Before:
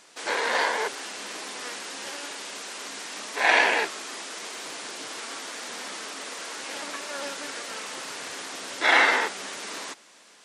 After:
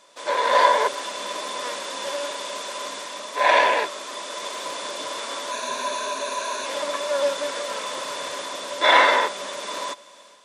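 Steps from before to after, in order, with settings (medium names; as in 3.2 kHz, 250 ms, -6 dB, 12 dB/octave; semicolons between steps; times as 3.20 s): 5.51–6.66 s: rippled EQ curve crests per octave 1.5, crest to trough 11 dB; level rider gain up to 6 dB; small resonant body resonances 580/1000/3500 Hz, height 16 dB, ringing for 50 ms; trim -4 dB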